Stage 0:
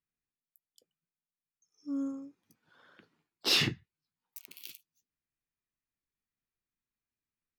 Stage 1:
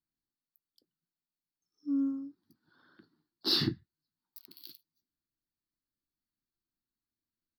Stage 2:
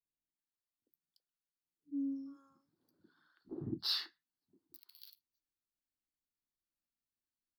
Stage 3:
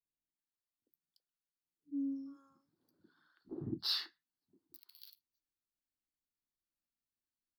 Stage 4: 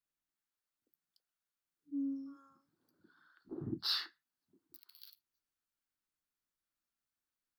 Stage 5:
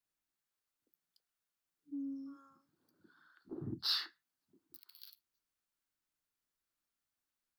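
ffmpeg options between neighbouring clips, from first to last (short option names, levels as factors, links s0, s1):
-af "firequalizer=gain_entry='entry(150,0);entry(330,6);entry(480,-11);entry(910,-5);entry(1600,-3);entry(2400,-19);entry(4400,5);entry(6600,-19);entry(13000,-3)':delay=0.05:min_phase=1"
-filter_complex "[0:a]acrossover=split=160|700[s0][s1][s2];[s1]adelay=50[s3];[s2]adelay=380[s4];[s0][s3][s4]amix=inputs=3:normalize=0,volume=0.473"
-af anull
-af "equalizer=f=1400:w=1.9:g=6.5"
-filter_complex "[0:a]acrossover=split=140|3000[s0][s1][s2];[s1]acompressor=threshold=0.00708:ratio=3[s3];[s0][s3][s2]amix=inputs=3:normalize=0,volume=1.12"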